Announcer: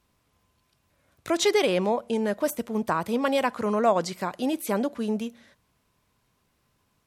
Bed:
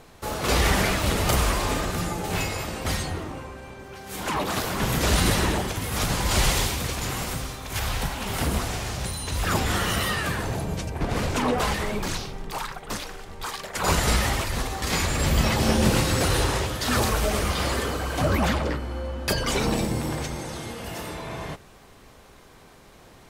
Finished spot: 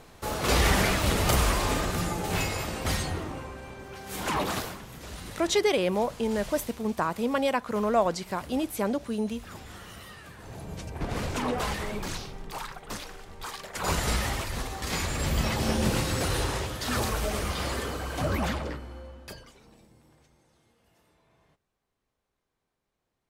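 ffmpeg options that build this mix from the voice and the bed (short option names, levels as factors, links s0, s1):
-filter_complex "[0:a]adelay=4100,volume=0.794[s0];[1:a]volume=4.47,afade=t=out:st=4.45:d=0.37:silence=0.11885,afade=t=in:st=10.37:d=0.65:silence=0.188365,afade=t=out:st=18.39:d=1.14:silence=0.0473151[s1];[s0][s1]amix=inputs=2:normalize=0"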